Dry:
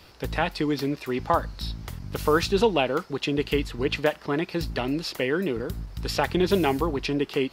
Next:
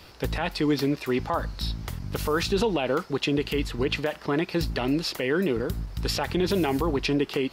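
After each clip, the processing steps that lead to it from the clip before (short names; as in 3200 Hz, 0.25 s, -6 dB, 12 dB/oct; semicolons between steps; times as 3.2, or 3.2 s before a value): limiter -17.5 dBFS, peak gain reduction 10 dB; gain +2.5 dB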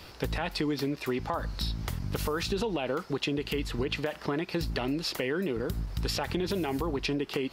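compressor, threshold -28 dBFS, peak gain reduction 8.5 dB; gain +1 dB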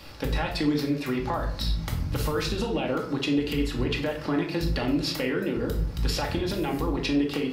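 shoebox room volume 750 m³, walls furnished, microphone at 2.3 m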